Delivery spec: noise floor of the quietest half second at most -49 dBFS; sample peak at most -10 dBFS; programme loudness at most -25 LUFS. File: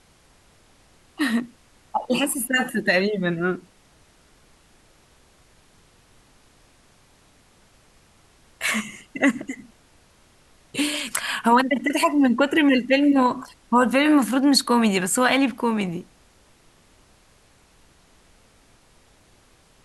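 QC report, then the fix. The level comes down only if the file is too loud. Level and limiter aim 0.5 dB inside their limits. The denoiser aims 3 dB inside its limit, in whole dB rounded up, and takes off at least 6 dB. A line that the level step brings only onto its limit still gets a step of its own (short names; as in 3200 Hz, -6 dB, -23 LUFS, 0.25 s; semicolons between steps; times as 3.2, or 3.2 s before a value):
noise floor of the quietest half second -57 dBFS: OK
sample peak -5.5 dBFS: fail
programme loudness -21.0 LUFS: fail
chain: gain -4.5 dB; limiter -10.5 dBFS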